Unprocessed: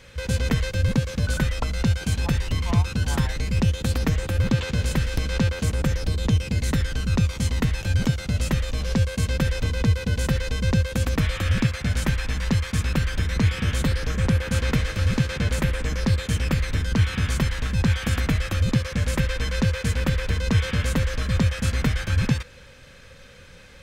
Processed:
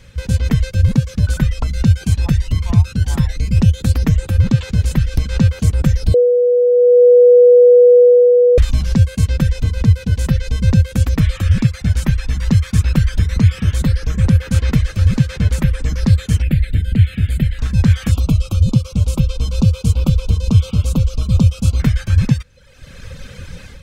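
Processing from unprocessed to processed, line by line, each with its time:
0:06.14–0:08.58: beep over 489 Hz −9.5 dBFS
0:16.42–0:17.59: phaser with its sweep stopped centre 2,500 Hz, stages 4
0:18.11–0:21.80: Butterworth band-reject 1,800 Hz, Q 1.3
whole clip: reverb reduction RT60 0.82 s; bass and treble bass +10 dB, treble +3 dB; automatic gain control; level −1 dB

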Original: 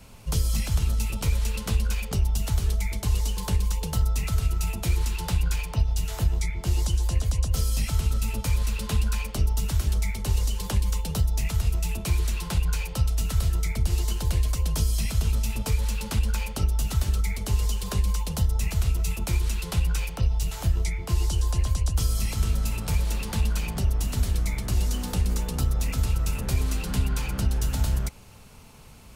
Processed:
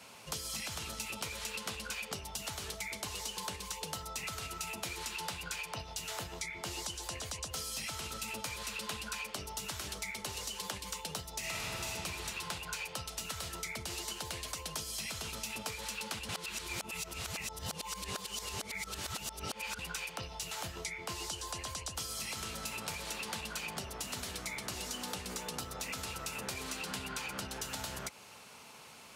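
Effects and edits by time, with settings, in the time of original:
0:11.39–0:11.87: thrown reverb, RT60 2.5 s, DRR −7 dB
0:16.29–0:19.79: reverse
whole clip: meter weighting curve A; downward compressor 4 to 1, threshold −38 dBFS; level +1 dB

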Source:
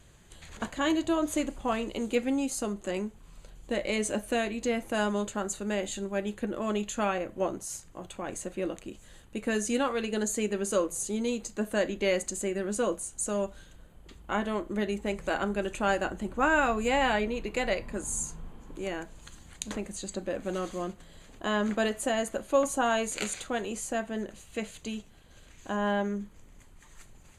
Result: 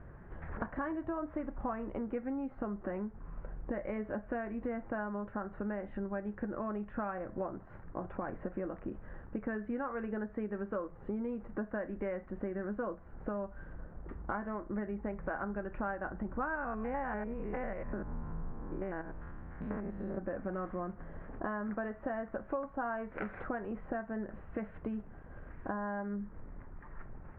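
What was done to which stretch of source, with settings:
0:16.55–0:20.18: spectrum averaged block by block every 100 ms
whole clip: Butterworth low-pass 1,700 Hz 36 dB per octave; dynamic equaliser 390 Hz, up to −6 dB, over −41 dBFS, Q 0.85; downward compressor 6 to 1, threshold −41 dBFS; level +6.5 dB

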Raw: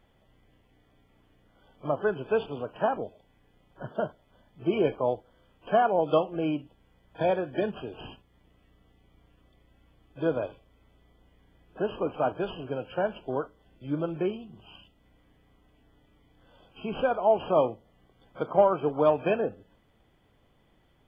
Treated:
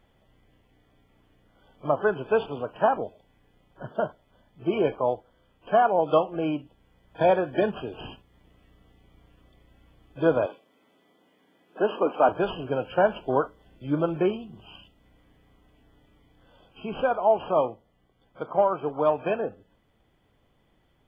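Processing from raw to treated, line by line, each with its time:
0:10.46–0:12.29: high-pass filter 210 Hz 24 dB per octave
whole clip: dynamic equaliser 1,000 Hz, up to +5 dB, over −39 dBFS, Q 0.84; speech leveller 2 s

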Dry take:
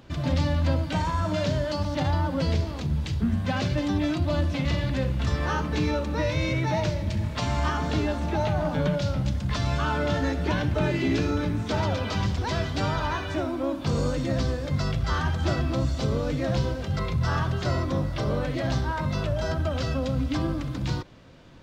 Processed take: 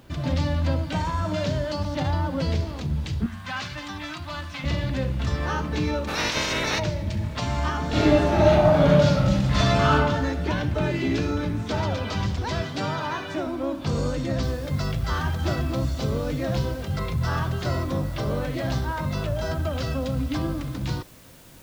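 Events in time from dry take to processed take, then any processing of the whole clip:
0:03.26–0:04.64: low shelf with overshoot 750 Hz −11.5 dB, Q 1.5
0:06.07–0:06.78: ceiling on every frequency bin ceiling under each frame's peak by 28 dB
0:07.89–0:09.93: thrown reverb, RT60 0.88 s, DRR −7.5 dB
0:12.62–0:13.47: high-pass filter 120 Hz 24 dB per octave
0:14.43: noise floor change −68 dB −53 dB

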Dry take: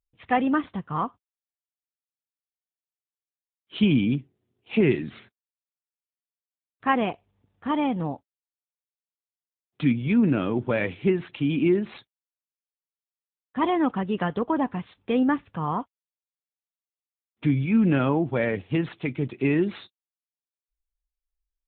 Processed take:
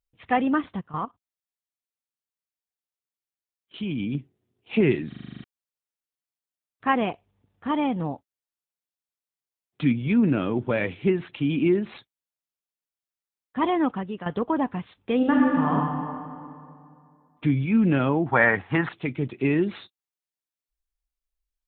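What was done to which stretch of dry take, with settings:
0:00.81–0:04.15: output level in coarse steps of 14 dB
0:05.08: stutter in place 0.04 s, 9 plays
0:13.83–0:14.26: fade out, to −12.5 dB
0:15.16–0:15.72: thrown reverb, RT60 2.4 s, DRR −3.5 dB
0:18.26–0:18.89: flat-topped bell 1,200 Hz +14.5 dB

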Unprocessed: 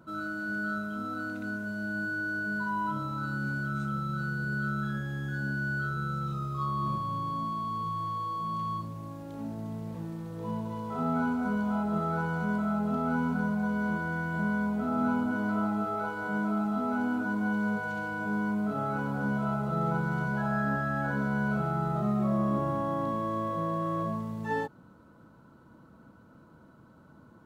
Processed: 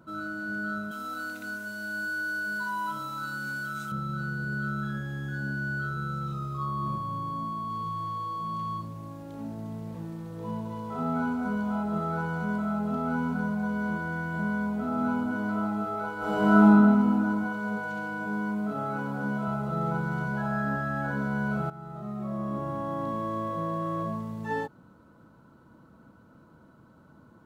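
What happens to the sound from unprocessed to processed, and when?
0:00.91–0:03.92: spectral tilt +3.5 dB per octave
0:06.57–0:07.70: parametric band 3,800 Hz −3.5 dB 1.7 octaves
0:16.17–0:16.64: thrown reverb, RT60 2.5 s, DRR −11 dB
0:17.44–0:19.48: high-pass filter 120 Hz
0:21.70–0:23.20: fade in, from −15 dB

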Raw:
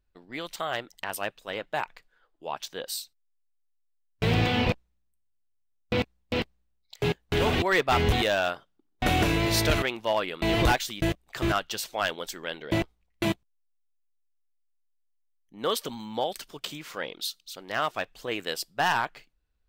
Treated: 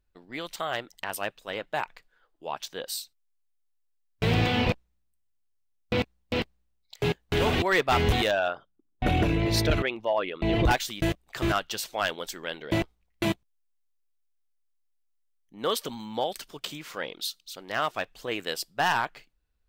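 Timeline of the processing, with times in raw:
0:08.31–0:10.71: spectral envelope exaggerated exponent 1.5

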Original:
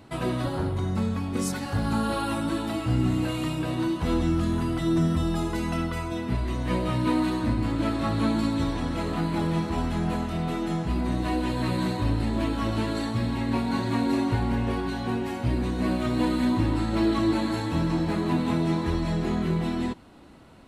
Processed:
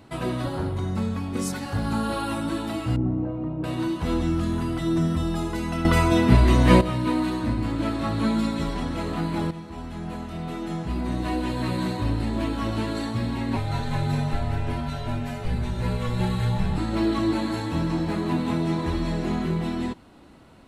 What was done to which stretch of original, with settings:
0:02.96–0:03.64: Chebyshev low-pass filter 640 Hz
0:05.85–0:06.81: clip gain +11.5 dB
0:08.24–0:08.84: comb filter 5.1 ms
0:09.51–0:11.26: fade in, from −12.5 dB
0:13.56–0:16.78: frequency shifter −130 Hz
0:18.72–0:19.46: flutter between parallel walls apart 11.8 metres, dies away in 0.59 s

